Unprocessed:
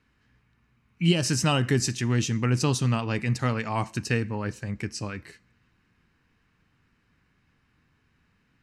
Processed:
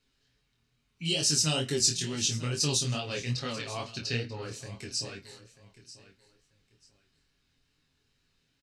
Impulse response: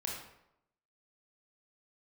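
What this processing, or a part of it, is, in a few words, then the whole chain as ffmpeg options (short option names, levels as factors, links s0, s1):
double-tracked vocal: -filter_complex "[0:a]equalizer=f=125:t=o:w=1:g=-9,equalizer=f=250:t=o:w=1:g=-6,equalizer=f=1000:t=o:w=1:g=-9,equalizer=f=2000:t=o:w=1:g=-8,equalizer=f=4000:t=o:w=1:g=8,equalizer=f=8000:t=o:w=1:g=5,aecho=1:1:7.3:0.53,asettb=1/sr,asplit=3[s0][s1][s2];[s0]atrim=end=2.944[s3];[s1]atrim=start=2.94:end=4.43,asetpts=PTS-STARTPTS,afade=t=in:d=0.004:c=qsin,afade=t=out:st=1.486:d=0.004:c=qsin,highshelf=f=6000:t=q:w=1.5:g=-13.5[s4];[s2]atrim=start=4.426[s5];[s3][s4]acrossfade=d=0.004:c1=hsin:c2=qsin[s6];[s6][s5]acrossfade=d=0.004:c1=qsin:c2=hsin,asplit=2[s7][s8];[s8]adelay=26,volume=0.355[s9];[s7][s9]amix=inputs=2:normalize=0,aecho=1:1:939|1878:0.15|0.0344,flanger=delay=20:depth=5.8:speed=2.3"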